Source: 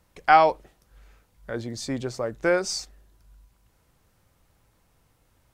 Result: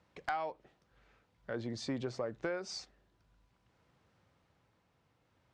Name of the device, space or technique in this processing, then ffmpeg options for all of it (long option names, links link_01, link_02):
AM radio: -af "highpass=100,lowpass=4200,acompressor=threshold=-28dB:ratio=10,asoftclip=type=tanh:threshold=-19dB,tremolo=f=0.5:d=0.29,volume=-3.5dB"